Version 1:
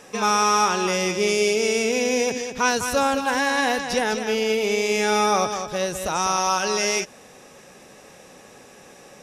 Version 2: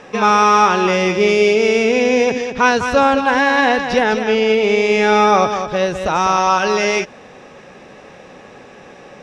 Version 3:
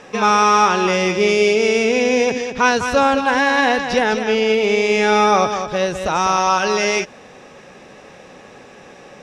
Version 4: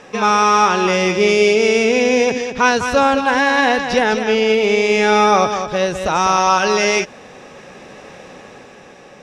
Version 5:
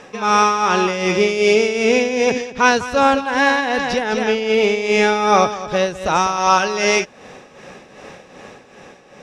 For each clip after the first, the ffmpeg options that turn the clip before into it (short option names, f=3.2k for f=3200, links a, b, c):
-af "lowpass=3.2k,volume=8dB"
-af "highshelf=f=6k:g=8,volume=-2dB"
-af "dynaudnorm=f=140:g=11:m=4dB"
-af "tremolo=f=2.6:d=0.62,volume=1dB"